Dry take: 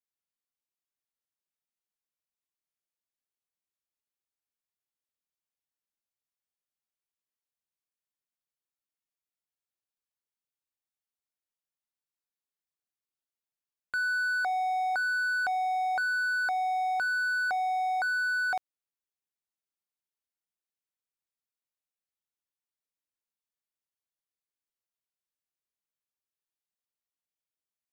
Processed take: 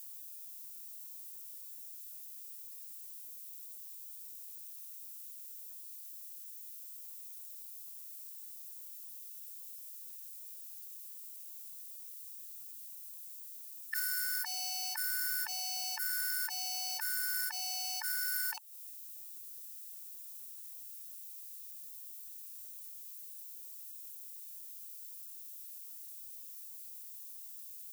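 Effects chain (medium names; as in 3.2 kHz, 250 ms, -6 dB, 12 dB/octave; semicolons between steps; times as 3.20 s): Chebyshev shaper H 8 -36 dB, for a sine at -23.5 dBFS; added noise violet -59 dBFS; formant shift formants +3 st; compression 12:1, threshold -38 dBFS, peak gain reduction 14 dB; Bessel high-pass 1.6 kHz, order 2; treble shelf 4.9 kHz +7.5 dB; trim +3.5 dB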